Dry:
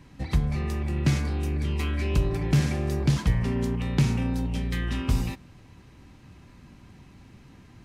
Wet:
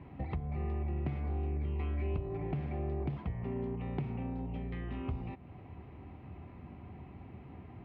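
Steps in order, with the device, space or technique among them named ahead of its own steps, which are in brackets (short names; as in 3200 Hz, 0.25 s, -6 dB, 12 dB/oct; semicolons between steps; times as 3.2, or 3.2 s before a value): bass amplifier (compressor 4:1, threshold -37 dBFS, peak gain reduction 17 dB; speaker cabinet 61–2400 Hz, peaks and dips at 79 Hz +8 dB, 390 Hz +5 dB, 720 Hz +9 dB, 1600 Hz -9 dB)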